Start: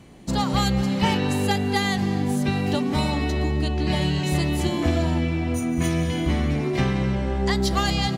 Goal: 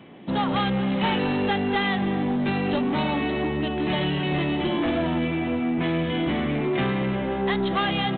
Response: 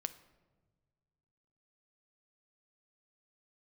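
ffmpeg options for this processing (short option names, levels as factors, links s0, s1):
-af "highpass=190,aresample=8000,asoftclip=type=tanh:threshold=0.075,aresample=44100,volume=1.58"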